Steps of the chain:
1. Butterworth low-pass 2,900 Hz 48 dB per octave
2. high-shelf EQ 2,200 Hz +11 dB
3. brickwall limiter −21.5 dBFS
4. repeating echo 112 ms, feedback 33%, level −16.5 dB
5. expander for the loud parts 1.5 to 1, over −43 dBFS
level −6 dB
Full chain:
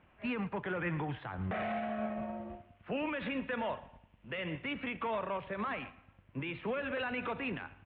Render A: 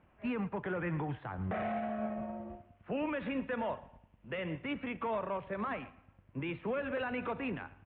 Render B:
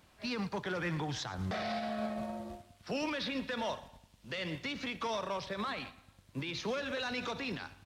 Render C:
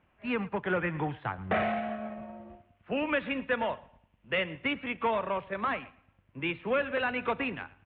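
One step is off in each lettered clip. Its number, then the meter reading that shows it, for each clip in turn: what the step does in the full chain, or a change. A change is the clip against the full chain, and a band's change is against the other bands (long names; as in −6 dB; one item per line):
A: 2, 4 kHz band −5.5 dB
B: 1, 4 kHz band +8.5 dB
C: 3, average gain reduction 3.0 dB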